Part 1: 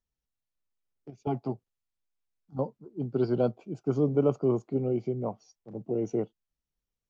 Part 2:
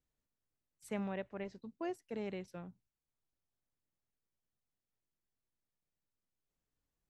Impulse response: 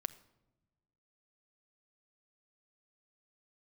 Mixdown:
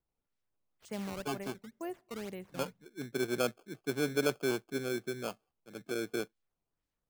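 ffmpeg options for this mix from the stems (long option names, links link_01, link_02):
-filter_complex "[0:a]equalizer=frequency=67:width=0.39:gain=-13.5,adynamicsmooth=sensitivity=6:basefreq=1100,acrusher=samples=23:mix=1:aa=0.000001,volume=-3dB[link_01];[1:a]acrusher=samples=15:mix=1:aa=0.000001:lfo=1:lforange=24:lforate=2,volume=-3dB,asplit=2[link_02][link_03];[link_03]volume=-9dB[link_04];[2:a]atrim=start_sample=2205[link_05];[link_04][link_05]afir=irnorm=-1:irlink=0[link_06];[link_01][link_02][link_06]amix=inputs=3:normalize=0"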